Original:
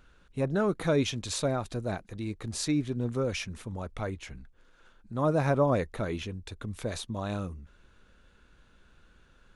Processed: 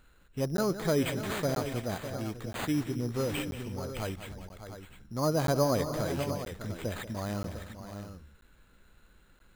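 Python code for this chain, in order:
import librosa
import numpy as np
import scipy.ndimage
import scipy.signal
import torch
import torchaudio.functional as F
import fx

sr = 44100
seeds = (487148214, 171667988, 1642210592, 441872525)

y = np.repeat(x[::8], 8)[:len(x)]
y = fx.echo_multitap(y, sr, ms=(185, 296, 602, 700), db=(-12.5, -18.5, -11.0, -11.0))
y = fx.buffer_crackle(y, sr, first_s=0.57, period_s=0.98, block=512, kind='zero')
y = F.gain(torch.from_numpy(y), -2.0).numpy()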